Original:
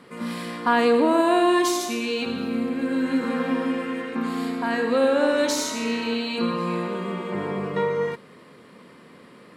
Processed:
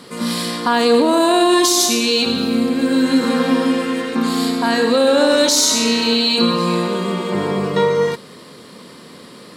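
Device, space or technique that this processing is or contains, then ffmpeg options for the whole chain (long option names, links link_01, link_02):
over-bright horn tweeter: -af "highshelf=frequency=3100:width_type=q:width=1.5:gain=8,alimiter=limit=-13.5dB:level=0:latency=1:release=32,volume=8.5dB"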